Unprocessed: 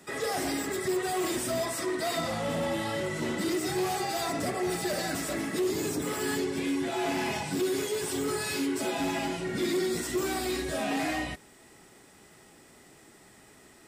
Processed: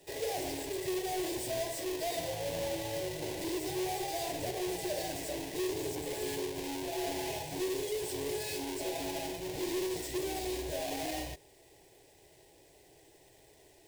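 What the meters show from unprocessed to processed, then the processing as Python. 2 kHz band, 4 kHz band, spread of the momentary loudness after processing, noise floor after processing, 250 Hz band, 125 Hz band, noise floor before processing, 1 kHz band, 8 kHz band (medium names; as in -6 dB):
-9.5 dB, -4.5 dB, 3 LU, -61 dBFS, -8.0 dB, -6.5 dB, -56 dBFS, -6.5 dB, -5.0 dB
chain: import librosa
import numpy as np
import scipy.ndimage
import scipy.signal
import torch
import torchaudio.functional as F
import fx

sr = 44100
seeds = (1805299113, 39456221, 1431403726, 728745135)

y = fx.halfwave_hold(x, sr)
y = fx.fixed_phaser(y, sr, hz=530.0, stages=4)
y = y * librosa.db_to_amplitude(-7.0)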